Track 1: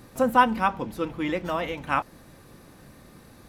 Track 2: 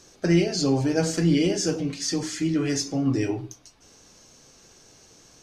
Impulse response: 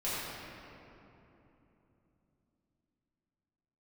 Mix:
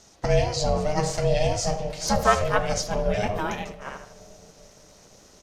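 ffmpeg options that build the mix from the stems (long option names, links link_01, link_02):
-filter_complex "[0:a]adelay=1900,volume=1.5dB,asplit=2[link_01][link_02];[link_02]volume=-14.5dB[link_03];[1:a]volume=1dB,asplit=3[link_04][link_05][link_06];[link_05]volume=-18.5dB[link_07];[link_06]apad=whole_len=237598[link_08];[link_01][link_08]sidechaingate=range=-18dB:threshold=-50dB:ratio=16:detection=peak[link_09];[2:a]atrim=start_sample=2205[link_10];[link_07][link_10]afir=irnorm=-1:irlink=0[link_11];[link_03]aecho=0:1:79|158|237|316|395:1|0.38|0.144|0.0549|0.0209[link_12];[link_09][link_04][link_11][link_12]amix=inputs=4:normalize=0,aeval=exprs='val(0)*sin(2*PI*310*n/s)':channel_layout=same"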